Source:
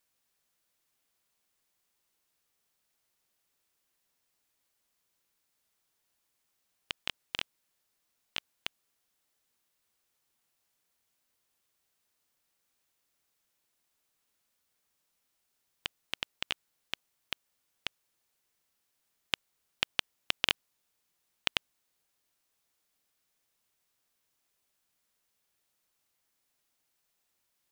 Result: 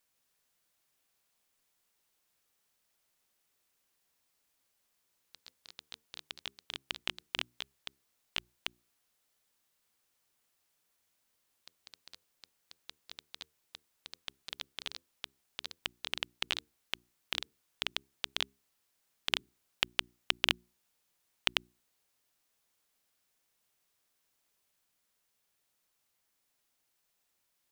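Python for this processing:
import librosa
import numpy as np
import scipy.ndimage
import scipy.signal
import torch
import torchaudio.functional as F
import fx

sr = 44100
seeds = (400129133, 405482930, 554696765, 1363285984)

y = fx.hum_notches(x, sr, base_hz=60, count=6)
y = fx.echo_pitch(y, sr, ms=154, semitones=2, count=3, db_per_echo=-6.0)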